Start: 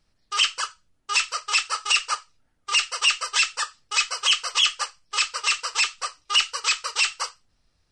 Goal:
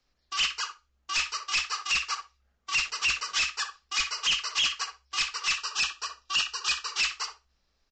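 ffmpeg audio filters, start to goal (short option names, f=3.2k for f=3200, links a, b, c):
-filter_complex "[0:a]asplit=2[a][b];[b]adelay=62,lowpass=f=1k:p=1,volume=-3.5dB,asplit=2[c][d];[d]adelay=62,lowpass=f=1k:p=1,volume=0.18,asplit=2[e][f];[f]adelay=62,lowpass=f=1k:p=1,volume=0.18[g];[c][e][g]amix=inputs=3:normalize=0[h];[a][h]amix=inputs=2:normalize=0,aeval=exprs='0.168*(abs(mod(val(0)/0.168+3,4)-2)-1)':c=same,asettb=1/sr,asplit=3[i][j][k];[i]atrim=end=5.564[l];[j]atrim=start=5.56:end=6.88,asetpts=PTS-STARTPTS,afade=t=in:d=0.004:c=qsin,afade=t=out:st=1.316:d=0.004:c=qsin,asuperstop=centerf=2200:order=12:qfactor=5.4[m];[k]atrim=start=6.876[n];[l][m]acrossfade=d=0.004:c1=hsin:c2=qsin[o];[o][n]acrossfade=d=0.004:c1=qsin:c2=hsin,acrossover=split=250|1200[p][q][r];[q]acompressor=threshold=-50dB:ratio=4[s];[p][s][r]amix=inputs=3:normalize=0,asettb=1/sr,asplit=3[t][u][v];[t]atrim=end=2.754[w];[u]atrim=start=2.75:end=3.39,asetpts=PTS-STARTPTS,afade=t=in:d=0.004:c=qsin,afade=t=out:st=0.636:d=0.004:c=qsin,aeval=exprs='val(0)*gte(abs(val(0)),0.01)':c=same[x];[v]atrim=start=3.386[y];[w][x]acrossfade=d=0.004:c1=hsin:c2=qsin[z];[z][y]acrossfade=d=0.004:c1=qsin:c2=hsin,aresample=16000,aresample=44100,afreqshift=-66,equalizer=f=64:t=o:w=2.5:g=-11,volume=-2.5dB"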